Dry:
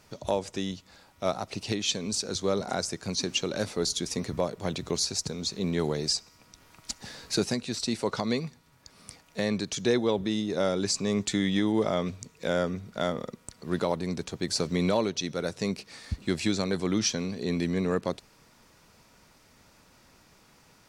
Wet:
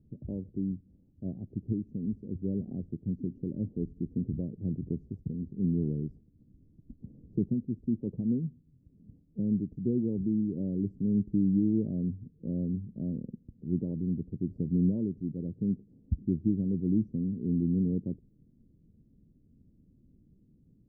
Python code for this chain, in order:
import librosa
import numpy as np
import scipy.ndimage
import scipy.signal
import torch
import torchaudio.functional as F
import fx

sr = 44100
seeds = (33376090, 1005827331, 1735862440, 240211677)

y = scipy.signal.sosfilt(scipy.signal.cheby2(4, 70, 1300.0, 'lowpass', fs=sr, output='sos'), x)
y = y * 10.0 ** (2.5 / 20.0)